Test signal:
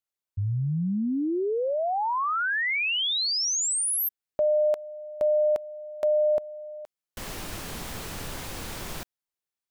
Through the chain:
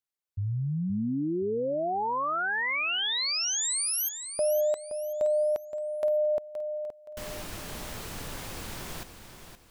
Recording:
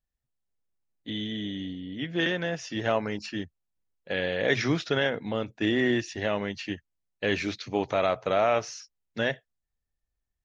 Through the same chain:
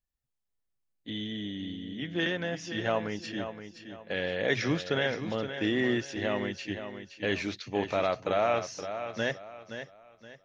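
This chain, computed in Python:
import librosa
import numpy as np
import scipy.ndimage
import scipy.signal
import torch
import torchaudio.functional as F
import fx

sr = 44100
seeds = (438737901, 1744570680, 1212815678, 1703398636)

y = fx.echo_feedback(x, sr, ms=521, feedback_pct=32, wet_db=-9.5)
y = y * librosa.db_to_amplitude(-3.0)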